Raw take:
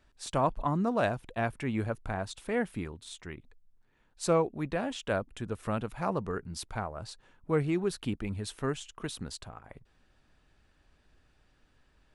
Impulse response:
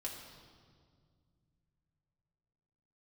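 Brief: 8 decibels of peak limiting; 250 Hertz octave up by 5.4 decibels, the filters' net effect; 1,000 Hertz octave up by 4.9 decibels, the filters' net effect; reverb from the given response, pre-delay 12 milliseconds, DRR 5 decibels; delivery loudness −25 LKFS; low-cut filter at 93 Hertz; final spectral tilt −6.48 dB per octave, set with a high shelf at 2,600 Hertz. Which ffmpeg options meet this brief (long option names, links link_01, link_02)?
-filter_complex "[0:a]highpass=93,equalizer=frequency=250:width_type=o:gain=7,equalizer=frequency=1000:width_type=o:gain=6.5,highshelf=frequency=2600:gain=-4.5,alimiter=limit=-18dB:level=0:latency=1,asplit=2[link_01][link_02];[1:a]atrim=start_sample=2205,adelay=12[link_03];[link_02][link_03]afir=irnorm=-1:irlink=0,volume=-4dB[link_04];[link_01][link_04]amix=inputs=2:normalize=0,volume=5dB"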